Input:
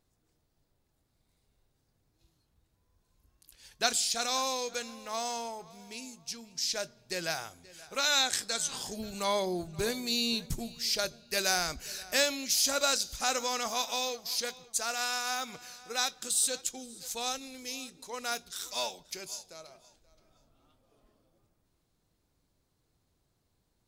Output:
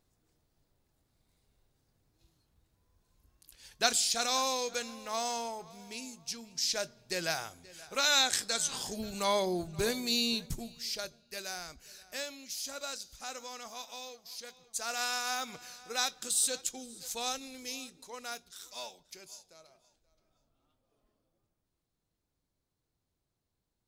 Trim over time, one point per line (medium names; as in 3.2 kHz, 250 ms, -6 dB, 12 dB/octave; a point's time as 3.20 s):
10.17 s +0.5 dB
11.49 s -12 dB
14.45 s -12 dB
14.97 s -1 dB
17.72 s -1 dB
18.53 s -9 dB